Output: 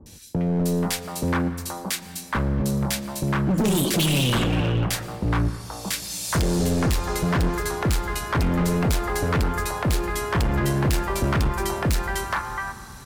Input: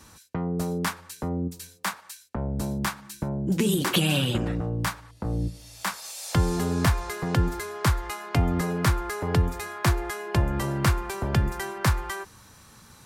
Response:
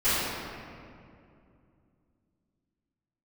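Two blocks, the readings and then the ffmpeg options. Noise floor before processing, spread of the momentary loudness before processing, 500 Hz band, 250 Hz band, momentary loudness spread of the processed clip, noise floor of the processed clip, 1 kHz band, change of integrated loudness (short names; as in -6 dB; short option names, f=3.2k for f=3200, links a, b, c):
-53 dBFS, 9 LU, +4.0 dB, +4.0 dB, 7 LU, -40 dBFS, +3.5 dB, +3.0 dB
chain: -filter_complex "[0:a]acrossover=split=650|2100[a][b][c];[c]adelay=60[d];[b]adelay=480[e];[a][e][d]amix=inputs=3:normalize=0,asoftclip=type=hard:threshold=-26dB,asplit=2[f][g];[1:a]atrim=start_sample=2205,adelay=108[h];[g][h]afir=irnorm=-1:irlink=0,volume=-29dB[i];[f][i]amix=inputs=2:normalize=0,volume=7.5dB"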